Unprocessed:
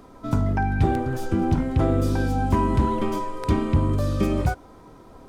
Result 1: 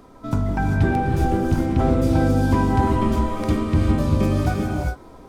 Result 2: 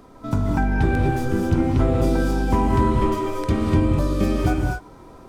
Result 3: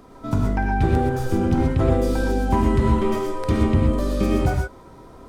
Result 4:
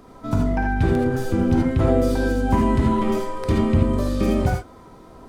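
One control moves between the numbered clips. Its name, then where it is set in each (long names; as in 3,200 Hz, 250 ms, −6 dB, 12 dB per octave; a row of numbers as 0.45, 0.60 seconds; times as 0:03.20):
reverb whose tail is shaped and stops, gate: 430, 270, 150, 100 milliseconds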